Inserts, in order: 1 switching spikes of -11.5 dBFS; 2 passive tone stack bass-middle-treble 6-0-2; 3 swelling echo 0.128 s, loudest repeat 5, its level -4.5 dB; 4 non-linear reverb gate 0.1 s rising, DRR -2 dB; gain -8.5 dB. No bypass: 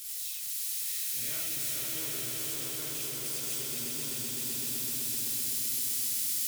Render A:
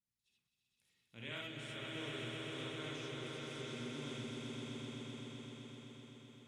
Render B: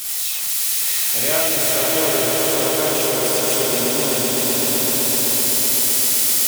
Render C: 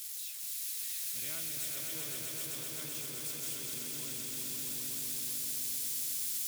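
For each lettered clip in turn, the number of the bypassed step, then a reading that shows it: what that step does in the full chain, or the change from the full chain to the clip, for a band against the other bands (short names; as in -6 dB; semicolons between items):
1, 8 kHz band -28.0 dB; 2, 500 Hz band +10.0 dB; 4, echo-to-direct 10.0 dB to 5.0 dB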